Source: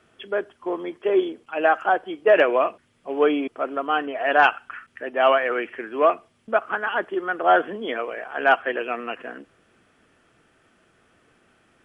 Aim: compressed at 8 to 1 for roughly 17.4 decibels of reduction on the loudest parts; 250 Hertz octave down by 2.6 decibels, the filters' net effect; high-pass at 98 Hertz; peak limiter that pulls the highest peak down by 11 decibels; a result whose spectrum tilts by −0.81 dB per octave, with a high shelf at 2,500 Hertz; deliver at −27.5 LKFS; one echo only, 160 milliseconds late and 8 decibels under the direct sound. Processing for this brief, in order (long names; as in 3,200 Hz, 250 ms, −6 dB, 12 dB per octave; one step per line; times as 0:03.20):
high-pass filter 98 Hz
parametric band 250 Hz −4 dB
high-shelf EQ 2,500 Hz +5.5 dB
downward compressor 8 to 1, threshold −30 dBFS
brickwall limiter −29.5 dBFS
single-tap delay 160 ms −8 dB
level +11.5 dB